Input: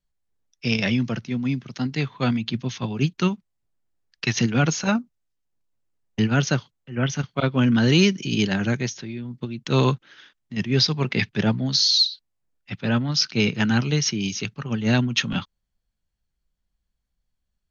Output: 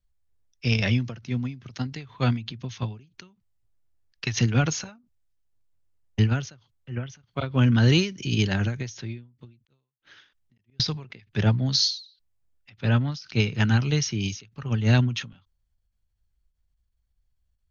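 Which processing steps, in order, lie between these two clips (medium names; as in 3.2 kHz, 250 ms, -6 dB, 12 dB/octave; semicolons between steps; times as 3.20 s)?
resonant low shelf 130 Hz +8.5 dB, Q 1.5; 9.51–10.80 s: inverted gate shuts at -17 dBFS, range -42 dB; endings held to a fixed fall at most 140 dB/s; trim -2 dB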